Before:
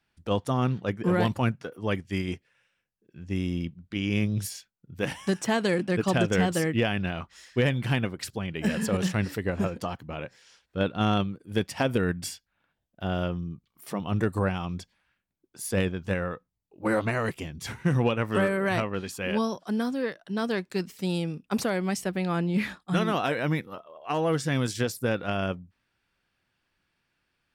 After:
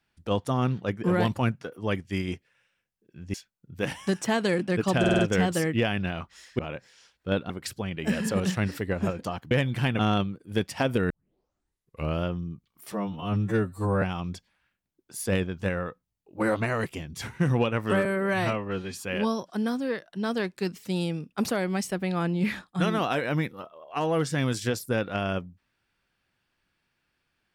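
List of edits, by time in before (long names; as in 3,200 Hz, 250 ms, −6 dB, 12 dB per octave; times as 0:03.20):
0:03.34–0:04.54: remove
0:06.19: stutter 0.05 s, 5 plays
0:07.59–0:08.07: swap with 0:10.08–0:10.99
0:12.10: tape start 1.15 s
0:13.92–0:14.47: time-stretch 2×
0:18.50–0:19.13: time-stretch 1.5×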